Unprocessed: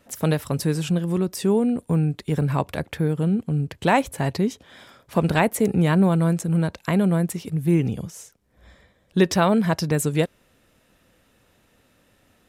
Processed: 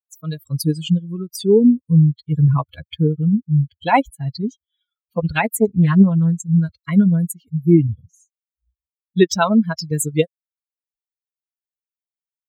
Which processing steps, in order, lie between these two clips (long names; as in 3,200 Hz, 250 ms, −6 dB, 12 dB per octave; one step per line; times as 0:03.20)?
spectral dynamics exaggerated over time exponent 3
0:02.47–0:03.16: dynamic equaliser 510 Hz, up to +6 dB, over −49 dBFS, Q 0.75
automatic gain control gain up to 14.5 dB
notch comb filter 600 Hz
0:05.25–0:06.32: highs frequency-modulated by the lows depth 0.3 ms